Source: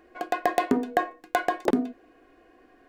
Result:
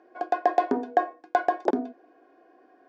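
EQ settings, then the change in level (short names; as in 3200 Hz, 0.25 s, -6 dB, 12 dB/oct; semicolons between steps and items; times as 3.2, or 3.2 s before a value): speaker cabinet 430–5500 Hz, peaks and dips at 490 Hz -5 dB, 1200 Hz -8 dB, 2000 Hz -10 dB, 2800 Hz -10 dB, 4000 Hz -7 dB; high shelf 2200 Hz -9 dB; +5.5 dB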